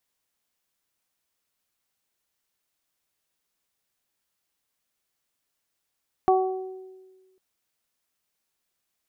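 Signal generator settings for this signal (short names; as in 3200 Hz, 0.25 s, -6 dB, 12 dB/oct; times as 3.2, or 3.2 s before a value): additive tone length 1.10 s, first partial 376 Hz, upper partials 2/-9 dB, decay 1.48 s, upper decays 0.80/0.54 s, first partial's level -18 dB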